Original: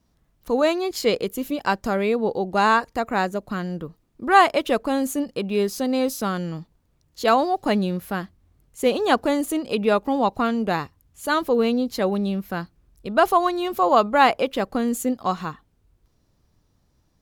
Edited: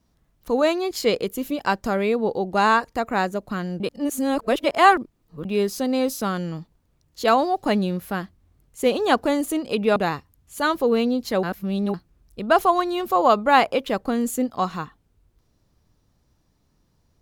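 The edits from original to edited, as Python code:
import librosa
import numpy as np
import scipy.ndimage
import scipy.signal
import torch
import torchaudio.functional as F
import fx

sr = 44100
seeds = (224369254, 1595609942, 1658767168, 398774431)

y = fx.edit(x, sr, fx.reverse_span(start_s=3.8, length_s=1.65),
    fx.cut(start_s=9.96, length_s=0.67),
    fx.reverse_span(start_s=12.1, length_s=0.51), tone=tone)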